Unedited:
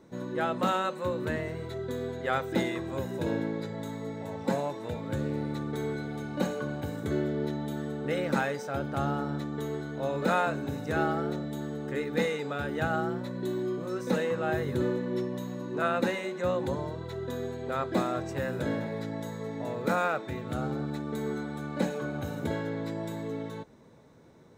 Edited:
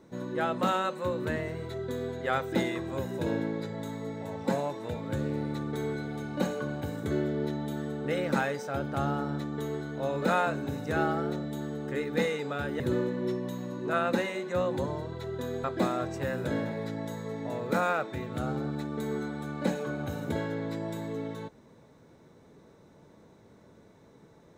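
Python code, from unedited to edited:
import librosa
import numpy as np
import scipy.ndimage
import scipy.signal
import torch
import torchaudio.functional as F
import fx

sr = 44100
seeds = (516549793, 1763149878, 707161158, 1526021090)

y = fx.edit(x, sr, fx.cut(start_s=12.8, length_s=1.89),
    fx.cut(start_s=17.53, length_s=0.26), tone=tone)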